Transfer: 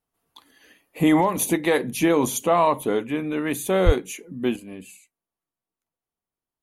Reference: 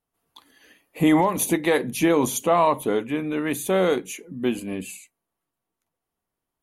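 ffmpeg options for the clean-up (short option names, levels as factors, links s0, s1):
-filter_complex "[0:a]asplit=3[s0][s1][s2];[s0]afade=t=out:st=3.85:d=0.02[s3];[s1]highpass=f=140:w=0.5412,highpass=f=140:w=1.3066,afade=t=in:st=3.85:d=0.02,afade=t=out:st=3.97:d=0.02[s4];[s2]afade=t=in:st=3.97:d=0.02[s5];[s3][s4][s5]amix=inputs=3:normalize=0,asetnsamples=n=441:p=0,asendcmd='4.56 volume volume 8dB',volume=1"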